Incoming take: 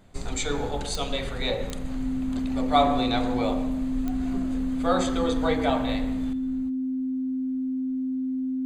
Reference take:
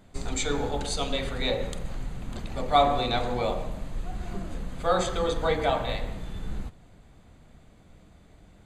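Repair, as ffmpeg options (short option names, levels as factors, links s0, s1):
-af "adeclick=t=4,bandreject=f=260:w=30,asetnsamples=n=441:p=0,asendcmd='6.33 volume volume 11.5dB',volume=1"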